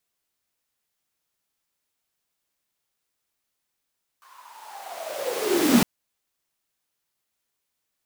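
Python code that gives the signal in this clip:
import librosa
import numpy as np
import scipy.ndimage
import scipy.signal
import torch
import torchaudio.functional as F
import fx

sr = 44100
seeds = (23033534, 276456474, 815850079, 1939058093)

y = fx.riser_noise(sr, seeds[0], length_s=1.61, colour='pink', kind='highpass', start_hz=1100.0, end_hz=200.0, q=11.0, swell_db=36.0, law='linear')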